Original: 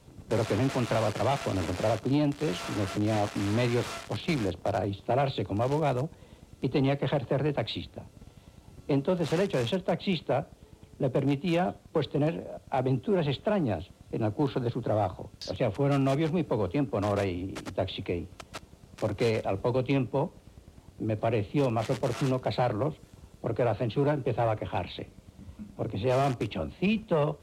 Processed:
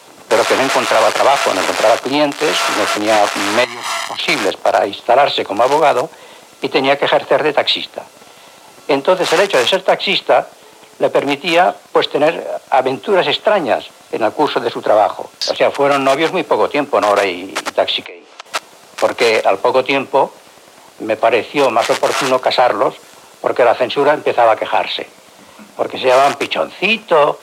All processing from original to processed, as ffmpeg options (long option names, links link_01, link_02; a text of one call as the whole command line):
ffmpeg -i in.wav -filter_complex "[0:a]asettb=1/sr,asplit=3[link_01][link_02][link_03];[link_01]atrim=end=3.644[link_04];[link_02]atrim=start=3.64:end=4.19,asetpts=PTS-STARTPTS,afade=type=in:duration=0.004:curve=qsin,afade=type=out:start_time=0.546:duration=0.004:curve=qsin,aecho=1:1:1:0.81,atrim=end_sample=24255,acompressor=threshold=-36dB:ratio=8:attack=3.2:release=140:knee=1:detection=peak[link_05];[link_03]atrim=start=4.186[link_06];[link_04][link_05]acrossfade=duration=0.004:curve1=hsin:curve2=qsin[link_07];[link_07][link_06]acrossfade=duration=0.004:curve1=qsin:curve2=hsin,asettb=1/sr,asplit=3[link_08][link_09][link_10];[link_08]atrim=end=18.054[link_11];[link_09]atrim=start=18.05:end=18.46,asetpts=PTS-STARTPTS,afade=type=in:duration=0.004:curve=qsin,afade=type=out:start_time=0.406:duration=0.004:curve=qsin,acrossover=split=290 7300:gain=0.112 1 0.0631[link_12][link_13][link_14];[link_12][link_13][link_14]amix=inputs=3:normalize=0,acompressor=threshold=-49dB:ratio=4:attack=3.2:release=140:knee=1:detection=peak[link_15];[link_10]atrim=start=18.456[link_16];[link_11][link_15]acrossfade=duration=0.004:curve1=hsin:curve2=qsin[link_17];[link_17][link_16]acrossfade=duration=0.004:curve1=qsin:curve2=hsin,highpass=850,tiltshelf=frequency=1100:gain=3,alimiter=level_in=25dB:limit=-1dB:release=50:level=0:latency=1,volume=-1dB" out.wav